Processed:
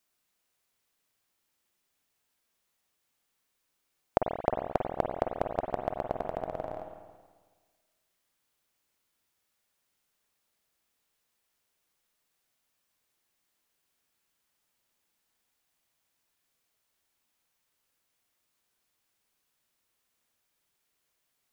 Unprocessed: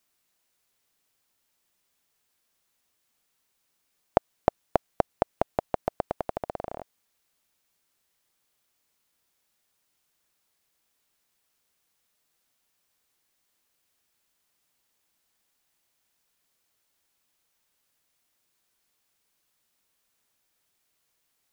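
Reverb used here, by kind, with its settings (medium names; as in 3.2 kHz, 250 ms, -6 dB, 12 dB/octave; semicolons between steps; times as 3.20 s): spring tank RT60 1.5 s, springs 46/54 ms, chirp 75 ms, DRR 3 dB; trim -4 dB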